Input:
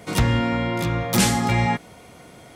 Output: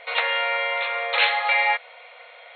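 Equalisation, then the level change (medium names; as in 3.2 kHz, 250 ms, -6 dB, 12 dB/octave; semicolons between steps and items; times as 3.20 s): brick-wall FIR band-pass 460–4300 Hz; peaking EQ 2.3 kHz +9 dB 0.92 oct; 0.0 dB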